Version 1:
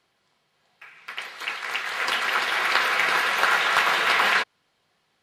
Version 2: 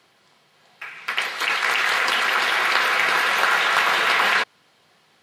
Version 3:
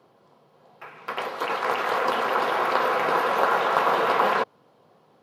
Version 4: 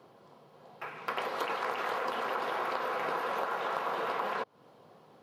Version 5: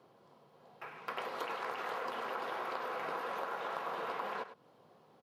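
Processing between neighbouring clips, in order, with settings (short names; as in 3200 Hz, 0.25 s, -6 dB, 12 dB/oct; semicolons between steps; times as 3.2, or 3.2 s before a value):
HPF 100 Hz; in parallel at +1 dB: negative-ratio compressor -31 dBFS, ratio -1
graphic EQ 125/250/500/1000/2000/4000/8000 Hz +9/+7/+11/+7/-8/-4/-9 dB; gain -5.5 dB
compressor 10:1, threshold -31 dBFS, peak gain reduction 15.5 dB; gain +1 dB
echo 0.102 s -12.5 dB; gain -6 dB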